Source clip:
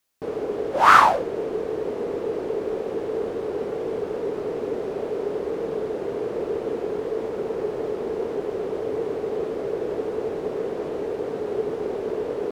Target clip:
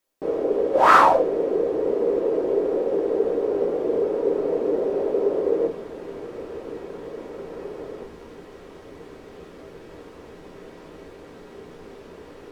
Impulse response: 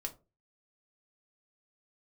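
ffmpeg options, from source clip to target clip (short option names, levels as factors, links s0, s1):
-filter_complex "[0:a]asetnsamples=n=441:p=0,asendcmd='5.67 equalizer g -4;8.04 equalizer g -13.5',equalizer=f=470:t=o:w=1.9:g=9.5[s0];[1:a]atrim=start_sample=2205[s1];[s0][s1]afir=irnorm=-1:irlink=0,volume=0.75"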